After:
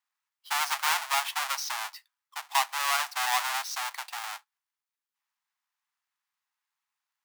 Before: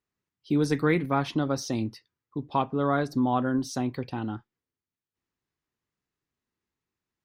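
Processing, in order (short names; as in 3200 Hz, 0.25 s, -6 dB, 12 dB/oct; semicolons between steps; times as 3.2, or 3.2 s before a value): half-waves squared off; steep high-pass 800 Hz 48 dB/oct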